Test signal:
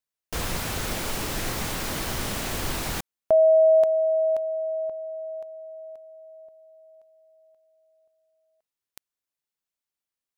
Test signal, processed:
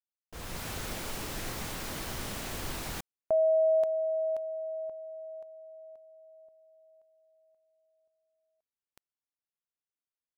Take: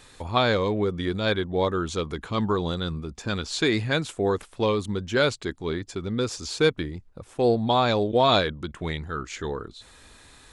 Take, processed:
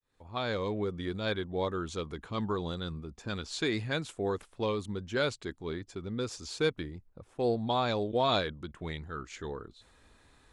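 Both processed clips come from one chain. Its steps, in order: opening faded in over 0.68 s; mismatched tape noise reduction decoder only; gain -8 dB

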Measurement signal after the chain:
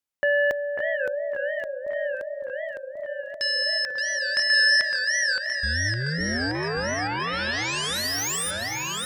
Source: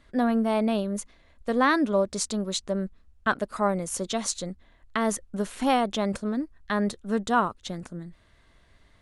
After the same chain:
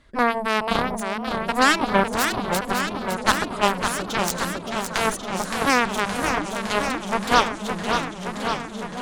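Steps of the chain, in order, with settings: echo with dull and thin repeats by turns 0.545 s, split 1500 Hz, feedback 70%, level -7.5 dB; added harmonics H 7 -12 dB, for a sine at -8.5 dBFS; warbling echo 0.566 s, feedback 75%, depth 210 cents, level -6.5 dB; gain +5 dB

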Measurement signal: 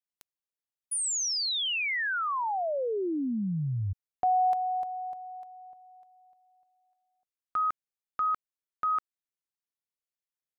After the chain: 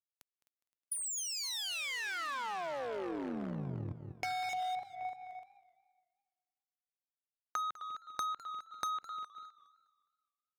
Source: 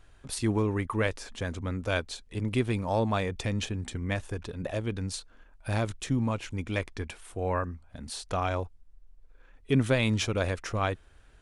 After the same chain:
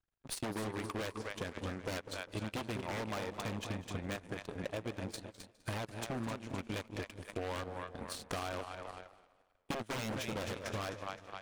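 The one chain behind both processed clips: transient shaper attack +2 dB, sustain -7 dB; split-band echo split 500 Hz, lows 0.198 s, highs 0.259 s, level -8 dB; wavefolder -23.5 dBFS; power-law curve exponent 2; high shelf 4400 Hz -3 dB; gate -55 dBFS, range -9 dB; low shelf 82 Hz -9 dB; compressor 4:1, threshold -43 dBFS; warbling echo 0.206 s, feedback 38%, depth 153 cents, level -18 dB; gain +5.5 dB

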